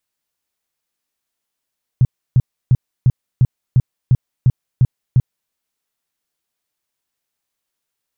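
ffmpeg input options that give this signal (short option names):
-f lavfi -i "aevalsrc='0.447*sin(2*PI*126*mod(t,0.35))*lt(mod(t,0.35),5/126)':d=3.5:s=44100"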